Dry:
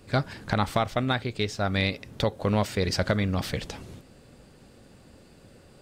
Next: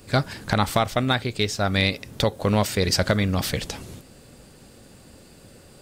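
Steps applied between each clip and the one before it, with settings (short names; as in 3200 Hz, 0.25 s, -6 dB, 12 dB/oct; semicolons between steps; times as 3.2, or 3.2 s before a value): high shelf 5800 Hz +10 dB; gain +3.5 dB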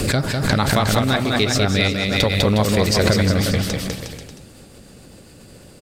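rotary speaker horn 7.5 Hz; on a send: bouncing-ball echo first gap 0.2 s, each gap 0.8×, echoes 5; on the sum: backwards sustainer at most 35 dB/s; gain +4 dB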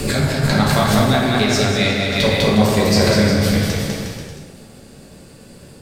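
plate-style reverb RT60 1.3 s, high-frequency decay 0.65×, DRR -3.5 dB; gain -3 dB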